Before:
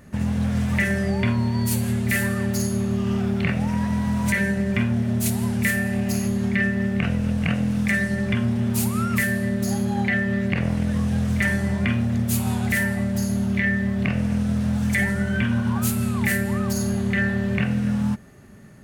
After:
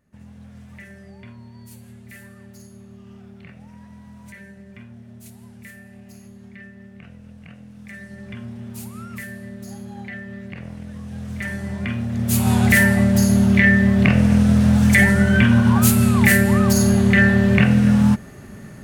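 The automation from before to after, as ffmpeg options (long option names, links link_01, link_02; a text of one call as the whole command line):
ffmpeg -i in.wav -af "volume=8dB,afade=type=in:start_time=7.75:duration=0.65:silence=0.398107,afade=type=in:start_time=11.02:duration=1.13:silence=0.316228,afade=type=in:start_time=12.15:duration=0.45:silence=0.316228" out.wav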